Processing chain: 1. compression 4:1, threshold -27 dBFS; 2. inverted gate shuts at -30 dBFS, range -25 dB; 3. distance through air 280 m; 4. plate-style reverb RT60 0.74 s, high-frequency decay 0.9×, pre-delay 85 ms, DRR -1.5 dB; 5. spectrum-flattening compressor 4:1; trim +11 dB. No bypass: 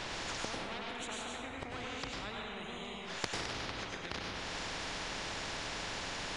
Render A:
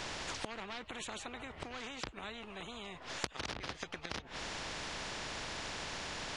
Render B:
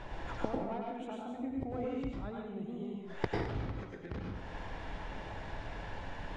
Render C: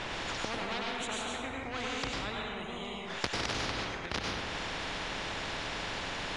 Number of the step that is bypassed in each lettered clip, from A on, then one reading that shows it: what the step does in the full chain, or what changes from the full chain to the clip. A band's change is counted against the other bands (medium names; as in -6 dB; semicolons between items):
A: 4, crest factor change +2.5 dB; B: 5, 4 kHz band -18.5 dB; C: 1, mean gain reduction 6.0 dB